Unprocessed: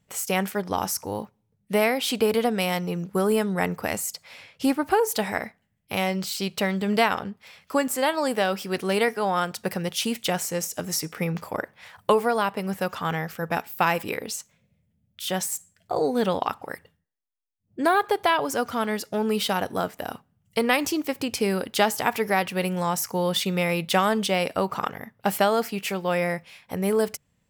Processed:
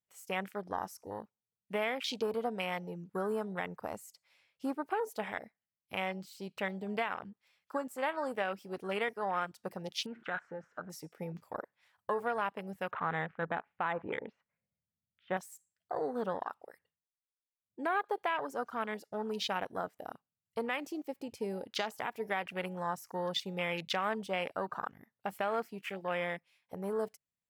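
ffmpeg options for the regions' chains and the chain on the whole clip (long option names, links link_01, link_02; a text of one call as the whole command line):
ffmpeg -i in.wav -filter_complex "[0:a]asettb=1/sr,asplit=3[link_01][link_02][link_03];[link_01]atrim=end=10.064[link_04];[link_02]atrim=start=10.06:end=10.9,asetpts=PTS-STARTPTS,afade=type=in:duration=0.004:curve=qsin,afade=type=out:start_time=0.836:duration=0.004:curve=qsin,aeval=exprs='val(0)+0.5*0.0126*sgn(val(0))':channel_layout=same,lowpass=frequency=1500:width_type=q:width=7.1,acompressor=threshold=-28dB:ratio=2:attack=3.2:release=140:knee=1:detection=peak[link_05];[link_03]atrim=start=10.896[link_06];[link_04][link_05]acrossfade=duration=0.004:curve1=hsin:curve2=qsin[link_07];[link_07][link_06]acrossfade=duration=0.004:curve1=qsin:curve2=hsin,asettb=1/sr,asplit=3[link_08][link_09][link_10];[link_08]atrim=end=12.914[link_11];[link_09]atrim=start=12.91:end=15.37,asetpts=PTS-STARTPTS,afade=type=in:duration=0.004:curve=qsin,afade=type=out:start_time=2.456:duration=0.004:curve=qsin,lowpass=frequency=2100:width=0.5412,lowpass=frequency=2100:width=1.3066,acontrast=32[link_12];[link_10]atrim=start=15.366[link_13];[link_11][link_12]acrossfade=duration=0.004:curve1=hsin:curve2=qsin[link_14];[link_14][link_13]acrossfade=duration=0.004:curve1=qsin:curve2=hsin,afwtdn=0.0316,lowshelf=frequency=490:gain=-9.5,alimiter=limit=-15.5dB:level=0:latency=1:release=122,volume=-6.5dB" out.wav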